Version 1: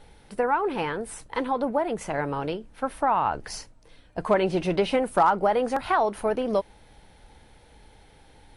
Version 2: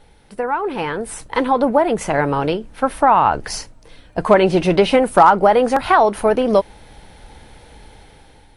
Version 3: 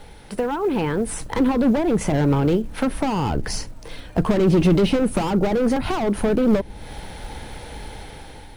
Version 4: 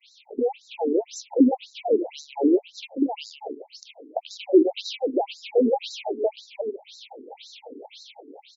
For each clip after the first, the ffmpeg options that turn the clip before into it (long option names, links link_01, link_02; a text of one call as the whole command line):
ffmpeg -i in.wav -af "dynaudnorm=framelen=400:gausssize=5:maxgain=10dB,volume=1.5dB" out.wav
ffmpeg -i in.wav -filter_complex "[0:a]asoftclip=type=hard:threshold=-17dB,acrusher=bits=7:mode=log:mix=0:aa=0.000001,acrossover=split=350[link_01][link_02];[link_02]acompressor=threshold=-36dB:ratio=4[link_03];[link_01][link_03]amix=inputs=2:normalize=0,volume=7.5dB" out.wav
ffmpeg -i in.wav -af "asuperstop=centerf=1400:order=12:qfactor=0.89,aecho=1:1:145:0.355,afftfilt=real='re*between(b*sr/1024,310*pow(5400/310,0.5+0.5*sin(2*PI*1.9*pts/sr))/1.41,310*pow(5400/310,0.5+0.5*sin(2*PI*1.9*pts/sr))*1.41)':imag='im*between(b*sr/1024,310*pow(5400/310,0.5+0.5*sin(2*PI*1.9*pts/sr))/1.41,310*pow(5400/310,0.5+0.5*sin(2*PI*1.9*pts/sr))*1.41)':win_size=1024:overlap=0.75,volume=4dB" out.wav